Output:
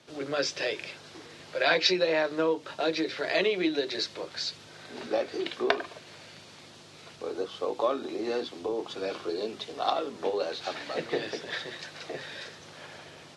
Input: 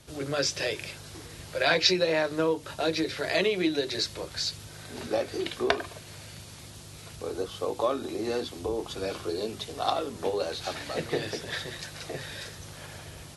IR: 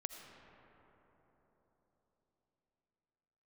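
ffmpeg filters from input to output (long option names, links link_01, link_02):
-af "highpass=230,lowpass=4900"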